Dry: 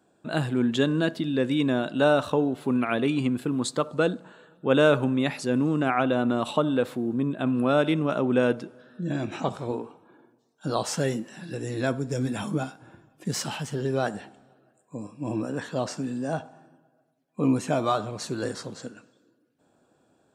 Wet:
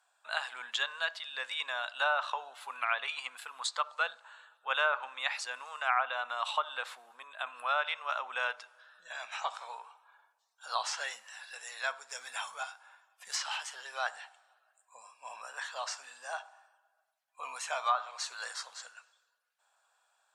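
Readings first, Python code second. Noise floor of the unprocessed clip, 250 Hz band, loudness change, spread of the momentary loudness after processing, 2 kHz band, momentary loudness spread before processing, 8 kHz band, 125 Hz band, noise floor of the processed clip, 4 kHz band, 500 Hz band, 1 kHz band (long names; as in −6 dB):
−67 dBFS, below −40 dB, −9.0 dB, 16 LU, −0.5 dB, 13 LU, −3.5 dB, below −40 dB, −77 dBFS, −1.0 dB, −17.5 dB, −3.0 dB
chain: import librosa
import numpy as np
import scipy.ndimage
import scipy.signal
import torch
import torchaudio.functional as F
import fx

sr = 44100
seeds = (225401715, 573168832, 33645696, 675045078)

y = scipy.signal.sosfilt(scipy.signal.cheby2(4, 50, 340.0, 'highpass', fs=sr, output='sos'), x)
y = fx.env_lowpass_down(y, sr, base_hz=1600.0, full_db=-22.5)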